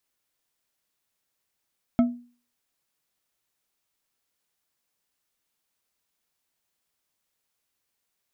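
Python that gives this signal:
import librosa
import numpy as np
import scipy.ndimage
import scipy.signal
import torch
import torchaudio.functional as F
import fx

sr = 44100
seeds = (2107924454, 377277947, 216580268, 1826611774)

y = fx.strike_glass(sr, length_s=0.89, level_db=-13, body='bar', hz=242.0, decay_s=0.4, tilt_db=9, modes=5)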